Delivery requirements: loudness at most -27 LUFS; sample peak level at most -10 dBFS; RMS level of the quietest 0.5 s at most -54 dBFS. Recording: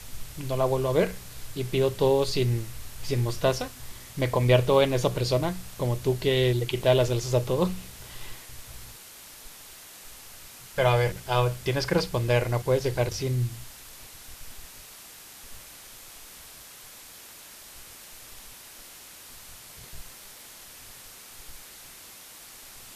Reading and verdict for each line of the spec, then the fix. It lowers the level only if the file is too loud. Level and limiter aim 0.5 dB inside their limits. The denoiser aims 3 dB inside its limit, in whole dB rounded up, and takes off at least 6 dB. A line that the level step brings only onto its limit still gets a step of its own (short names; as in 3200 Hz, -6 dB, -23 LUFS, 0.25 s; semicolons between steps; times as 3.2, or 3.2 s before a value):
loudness -26.0 LUFS: fail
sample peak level -8.0 dBFS: fail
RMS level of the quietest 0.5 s -47 dBFS: fail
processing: denoiser 9 dB, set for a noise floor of -47 dBFS; gain -1.5 dB; limiter -10.5 dBFS